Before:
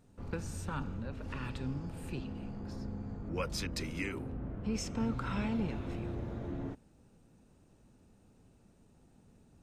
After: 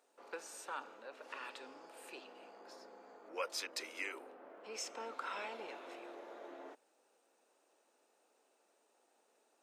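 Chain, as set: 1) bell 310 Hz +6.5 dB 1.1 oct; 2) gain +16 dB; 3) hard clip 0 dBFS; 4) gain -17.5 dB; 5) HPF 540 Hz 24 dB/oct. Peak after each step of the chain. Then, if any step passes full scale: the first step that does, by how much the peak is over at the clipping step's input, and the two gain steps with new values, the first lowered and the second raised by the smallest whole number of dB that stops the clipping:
-19.0, -3.0, -3.0, -20.5, -26.5 dBFS; no overload

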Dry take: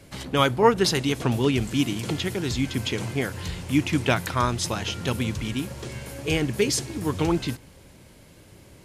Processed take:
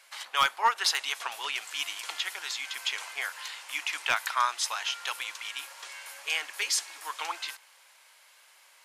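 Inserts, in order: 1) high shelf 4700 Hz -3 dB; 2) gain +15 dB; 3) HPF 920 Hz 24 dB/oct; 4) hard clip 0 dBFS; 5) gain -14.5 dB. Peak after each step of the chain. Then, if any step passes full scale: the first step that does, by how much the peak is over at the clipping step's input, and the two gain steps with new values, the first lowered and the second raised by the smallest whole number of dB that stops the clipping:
-4.5, +10.5, +7.0, 0.0, -14.5 dBFS; step 2, 7.0 dB; step 2 +8 dB, step 5 -7.5 dB

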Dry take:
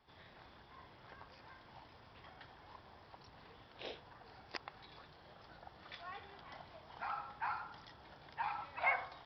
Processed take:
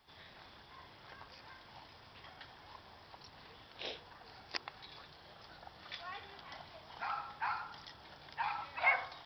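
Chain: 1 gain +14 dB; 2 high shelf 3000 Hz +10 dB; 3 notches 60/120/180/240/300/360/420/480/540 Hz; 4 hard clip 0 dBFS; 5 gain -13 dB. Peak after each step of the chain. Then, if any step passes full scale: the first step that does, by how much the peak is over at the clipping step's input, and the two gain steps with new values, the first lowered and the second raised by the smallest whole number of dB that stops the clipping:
-7.5, -5.0, -5.0, -5.0, -18.0 dBFS; no overload

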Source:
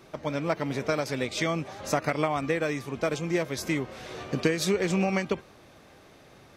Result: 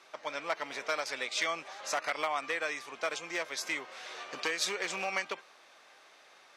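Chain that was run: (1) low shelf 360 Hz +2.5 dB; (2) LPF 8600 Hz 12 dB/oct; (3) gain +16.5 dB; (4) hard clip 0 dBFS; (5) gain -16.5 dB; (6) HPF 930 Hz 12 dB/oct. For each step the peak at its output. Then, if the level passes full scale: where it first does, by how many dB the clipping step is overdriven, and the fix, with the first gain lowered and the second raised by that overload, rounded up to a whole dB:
-9.0, -9.0, +7.5, 0.0, -16.5, -16.0 dBFS; step 3, 7.5 dB; step 3 +8.5 dB, step 5 -8.5 dB

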